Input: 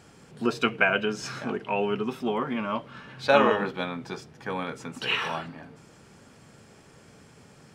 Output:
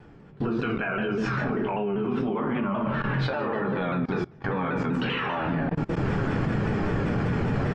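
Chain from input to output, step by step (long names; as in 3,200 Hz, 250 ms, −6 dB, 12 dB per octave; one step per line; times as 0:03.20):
camcorder AGC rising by 23 dB per second
in parallel at −0.5 dB: brickwall limiter −14.5 dBFS, peak gain reduction 11.5 dB
on the sum: rectangular room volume 45 cubic metres, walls mixed, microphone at 0.63 metres
dynamic equaliser 1,600 Hz, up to +3 dB, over −30 dBFS, Q 1.4
low-pass filter 2,200 Hz 12 dB per octave
on a send: repeating echo 149 ms, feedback 28%, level −14 dB
on the sum: output level in coarse steps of 24 dB
low-shelf EQ 220 Hz +7.5 dB
pitch modulation by a square or saw wave saw down 5.1 Hz, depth 100 cents
level −5 dB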